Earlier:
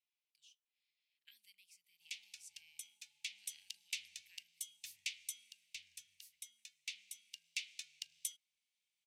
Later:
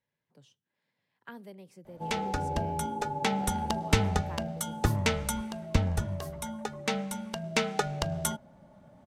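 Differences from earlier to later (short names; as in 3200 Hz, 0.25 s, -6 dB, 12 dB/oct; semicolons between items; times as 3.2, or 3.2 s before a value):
background +9.0 dB; master: remove elliptic high-pass 2400 Hz, stop band 50 dB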